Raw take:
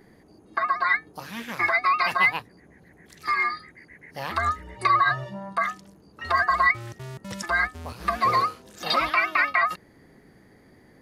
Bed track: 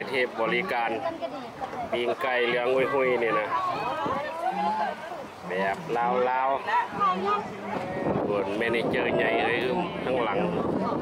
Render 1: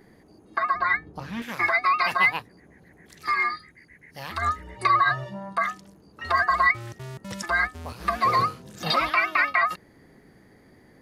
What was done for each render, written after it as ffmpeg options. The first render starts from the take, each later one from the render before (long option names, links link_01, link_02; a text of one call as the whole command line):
ffmpeg -i in.wav -filter_complex "[0:a]asettb=1/sr,asplit=3[link_01][link_02][link_03];[link_01]atrim=end=0.744[link_04];[link_02]atrim=start=0.74:end=1.42,asetpts=PTS-STARTPTS,afade=type=in:duration=0.004:curve=qsin,afade=type=out:start_time=0.676:duration=0.004:curve=qsin,aemphasis=mode=reproduction:type=bsi[link_05];[link_03]atrim=start=1.416[link_06];[link_04][link_05]acrossfade=duration=0.004:curve1=hsin:curve2=qsin[link_07];[link_07][link_06]acrossfade=duration=0.004:curve1=qsin:curve2=hsin,asettb=1/sr,asplit=3[link_08][link_09][link_10];[link_08]atrim=end=3.564[link_11];[link_09]atrim=start=3.56:end=4.42,asetpts=PTS-STARTPTS,afade=type=in:duration=0.004:curve=qsin,afade=type=out:start_time=0.856:duration=0.004:curve=qsin,equalizer=frequency=630:width=0.35:gain=-6.5[link_12];[link_10]atrim=start=4.416[link_13];[link_11][link_12]acrossfade=duration=0.004:curve1=hsin:curve2=qsin[link_14];[link_14][link_13]acrossfade=duration=0.004:curve1=qsin:curve2=hsin,asettb=1/sr,asplit=3[link_15][link_16][link_17];[link_15]atrim=end=8.394[link_18];[link_16]atrim=start=8.39:end=8.91,asetpts=PTS-STARTPTS,afade=type=in:duration=0.004:curve=qsin,afade=type=out:start_time=0.516:duration=0.004:curve=qsin,equalizer=frequency=140:width=1.3:gain=14[link_19];[link_17]atrim=start=8.906[link_20];[link_18][link_19]acrossfade=duration=0.004:curve1=hsin:curve2=qsin[link_21];[link_21][link_20]acrossfade=duration=0.004:curve1=qsin:curve2=hsin" out.wav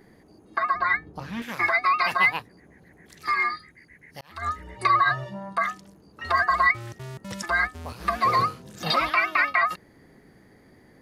ffmpeg -i in.wav -filter_complex "[0:a]asplit=2[link_01][link_02];[link_01]atrim=end=4.21,asetpts=PTS-STARTPTS,afade=type=out:start_time=4.206:duration=0.004:curve=hsin[link_03];[link_02]atrim=start=4.21,asetpts=PTS-STARTPTS,afade=type=in:duration=0.41[link_04];[link_03][link_04]concat=n=2:v=0:a=1" out.wav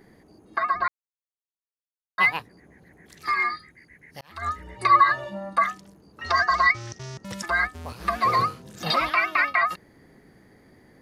ffmpeg -i in.wav -filter_complex "[0:a]asettb=1/sr,asplit=3[link_01][link_02][link_03];[link_01]atrim=end=4.914[link_04];[link_02]atrim=start=4.91:end=5.64,asetpts=PTS-STARTPTS,afade=type=in:duration=0.004:curve=qsin,afade=type=out:start_time=0.726:duration=0.004:curve=qsin,aecho=1:1:3.5:0.88,atrim=end_sample=32193[link_05];[link_03]atrim=start=5.636[link_06];[link_04][link_05]acrossfade=duration=0.004:curve1=hsin:curve2=qsin[link_07];[link_07][link_06]acrossfade=duration=0.004:curve1=qsin:curve2=hsin,asettb=1/sr,asplit=3[link_08][link_09][link_10];[link_08]atrim=end=6.264[link_11];[link_09]atrim=start=6.26:end=7.25,asetpts=PTS-STARTPTS,afade=type=in:duration=0.004:curve=qsin,afade=type=out:start_time=0.986:duration=0.004:curve=qsin,lowpass=frequency=5800:width_type=q:width=4.9[link_12];[link_10]atrim=start=7.246[link_13];[link_11][link_12]acrossfade=duration=0.004:curve1=hsin:curve2=qsin[link_14];[link_14][link_13]acrossfade=duration=0.004:curve1=qsin:curve2=hsin,asplit=3[link_15][link_16][link_17];[link_15]atrim=end=0.88,asetpts=PTS-STARTPTS,afade=type=out:start_time=0.876:duration=0.004:curve=hsin[link_18];[link_16]atrim=start=0.88:end=2.18,asetpts=PTS-STARTPTS,volume=0[link_19];[link_17]atrim=start=2.18,asetpts=PTS-STARTPTS,afade=type=in:duration=0.004:curve=hsin[link_20];[link_18][link_19][link_20]concat=n=3:v=0:a=1" out.wav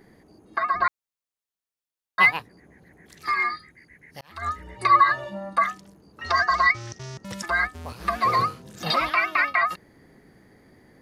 ffmpeg -i in.wav -filter_complex "[0:a]asplit=3[link_01][link_02][link_03];[link_01]atrim=end=0.742[link_04];[link_02]atrim=start=0.738:end=2.312,asetpts=PTS-STARTPTS,volume=3dB[link_05];[link_03]atrim=start=2.308[link_06];[link_04][link_05]acrossfade=duration=0.004:curve1=hsin:curve2=hsin[link_07];[link_07][link_06]acrossfade=duration=0.004:curve1=hsin:curve2=hsin" out.wav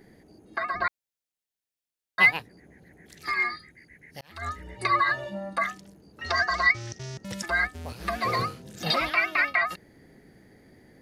ffmpeg -i in.wav -af "equalizer=frequency=1100:width=2.5:gain=-8" out.wav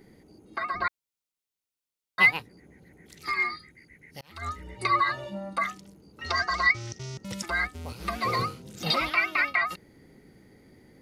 ffmpeg -i in.wav -af "equalizer=frequency=670:width_type=o:width=0.32:gain=-5.5,bandreject=frequency=1700:width=6.5" out.wav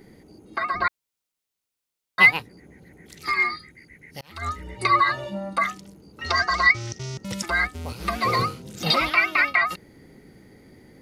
ffmpeg -i in.wav -af "volume=5dB" out.wav